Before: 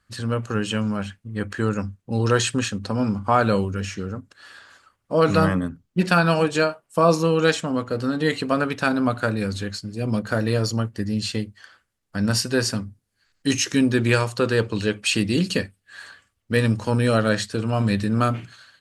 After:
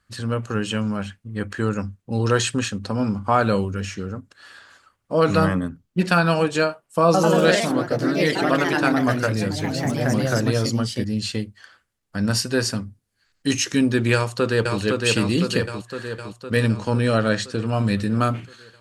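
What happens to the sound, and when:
7.05–11.43 s: ever faster or slower copies 92 ms, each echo +2 st, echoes 3
14.14–14.79 s: echo throw 510 ms, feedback 65%, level -3 dB
16.69–17.66 s: low-pass 8.3 kHz

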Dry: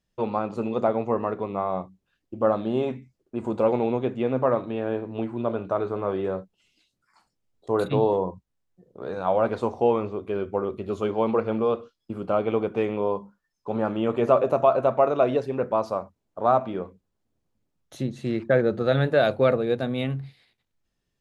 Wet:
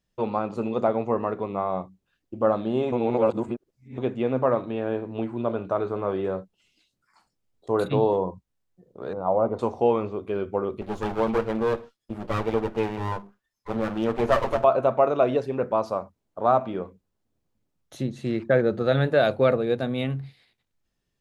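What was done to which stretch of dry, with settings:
2.92–3.98 s: reverse
9.13–9.59 s: Savitzky-Golay filter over 65 samples
10.81–14.64 s: comb filter that takes the minimum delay 8.8 ms

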